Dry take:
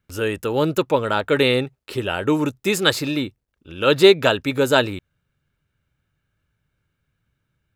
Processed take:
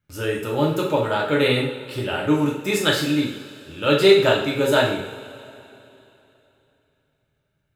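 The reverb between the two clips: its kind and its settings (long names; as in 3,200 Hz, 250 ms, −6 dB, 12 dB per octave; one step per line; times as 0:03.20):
coupled-rooms reverb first 0.56 s, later 3.2 s, from −18 dB, DRR −3.5 dB
level −6 dB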